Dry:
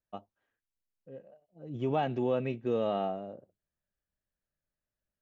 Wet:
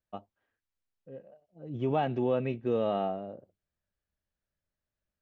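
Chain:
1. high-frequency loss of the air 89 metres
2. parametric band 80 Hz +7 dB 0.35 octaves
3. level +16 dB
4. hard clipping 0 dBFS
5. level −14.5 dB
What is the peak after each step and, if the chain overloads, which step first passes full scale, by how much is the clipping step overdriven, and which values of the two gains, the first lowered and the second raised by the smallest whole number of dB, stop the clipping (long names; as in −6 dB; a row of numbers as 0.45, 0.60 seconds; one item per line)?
−19.5, −19.5, −3.5, −3.5, −18.0 dBFS
no step passes full scale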